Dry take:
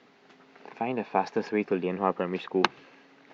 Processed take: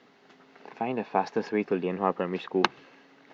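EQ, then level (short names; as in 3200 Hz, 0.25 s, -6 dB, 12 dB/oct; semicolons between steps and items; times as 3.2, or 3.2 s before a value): notch 2400 Hz, Q 18; 0.0 dB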